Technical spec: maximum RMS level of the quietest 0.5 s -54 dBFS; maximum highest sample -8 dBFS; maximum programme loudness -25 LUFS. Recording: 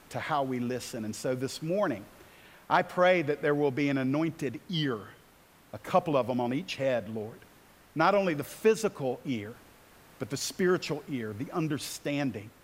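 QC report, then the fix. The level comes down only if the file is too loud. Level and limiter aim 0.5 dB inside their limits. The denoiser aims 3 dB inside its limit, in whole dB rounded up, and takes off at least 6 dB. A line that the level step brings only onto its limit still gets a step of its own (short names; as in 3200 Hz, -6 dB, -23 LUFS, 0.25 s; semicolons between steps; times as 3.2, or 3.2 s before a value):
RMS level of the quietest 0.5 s -59 dBFS: OK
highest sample -11.0 dBFS: OK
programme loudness -30.0 LUFS: OK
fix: none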